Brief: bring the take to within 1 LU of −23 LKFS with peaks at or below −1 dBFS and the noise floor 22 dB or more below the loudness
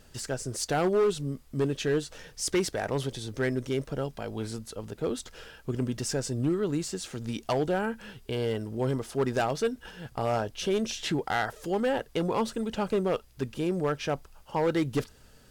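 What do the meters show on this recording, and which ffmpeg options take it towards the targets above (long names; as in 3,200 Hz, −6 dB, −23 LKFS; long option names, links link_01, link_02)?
integrated loudness −30.5 LKFS; sample peak −19.5 dBFS; target loudness −23.0 LKFS
→ -af "volume=7.5dB"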